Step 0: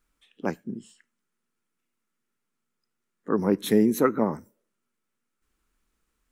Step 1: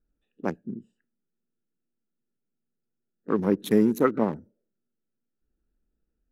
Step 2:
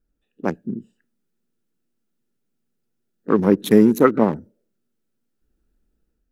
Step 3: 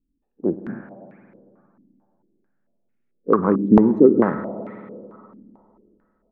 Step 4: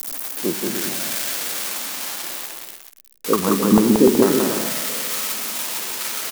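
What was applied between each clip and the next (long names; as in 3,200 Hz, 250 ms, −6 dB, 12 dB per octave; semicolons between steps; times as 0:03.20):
adaptive Wiener filter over 41 samples
automatic gain control gain up to 5 dB; level +3 dB
spring reverb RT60 2.7 s, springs 50/55 ms, chirp 20 ms, DRR 10 dB; low-pass on a step sequencer 4.5 Hz 270–2,200 Hz; level −4 dB
spike at every zero crossing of −9 dBFS; on a send: bouncing-ball delay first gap 180 ms, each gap 0.65×, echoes 5; on the sum: level −2 dB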